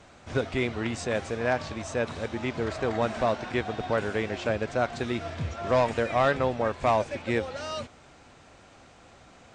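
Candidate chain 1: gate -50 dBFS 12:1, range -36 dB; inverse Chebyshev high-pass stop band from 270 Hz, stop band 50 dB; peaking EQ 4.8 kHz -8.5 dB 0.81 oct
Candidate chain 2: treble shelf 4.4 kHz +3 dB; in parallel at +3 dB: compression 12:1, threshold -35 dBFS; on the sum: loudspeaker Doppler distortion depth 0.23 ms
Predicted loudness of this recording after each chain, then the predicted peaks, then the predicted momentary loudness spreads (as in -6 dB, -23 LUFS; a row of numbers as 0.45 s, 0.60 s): -33.5 LUFS, -26.0 LUFS; -15.0 dBFS, -12.0 dBFS; 10 LU, 22 LU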